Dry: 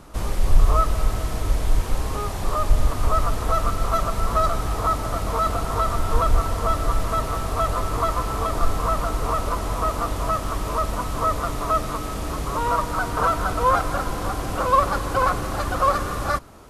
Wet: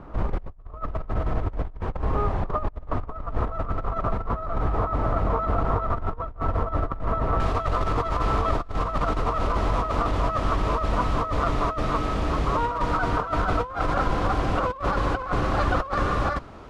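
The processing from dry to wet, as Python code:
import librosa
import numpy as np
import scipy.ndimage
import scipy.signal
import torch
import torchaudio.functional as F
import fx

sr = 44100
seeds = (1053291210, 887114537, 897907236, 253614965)

y = fx.lowpass(x, sr, hz=fx.steps((0.0, 1500.0), (7.4, 3500.0)), slope=12)
y = fx.over_compress(y, sr, threshold_db=-24.0, ratio=-0.5)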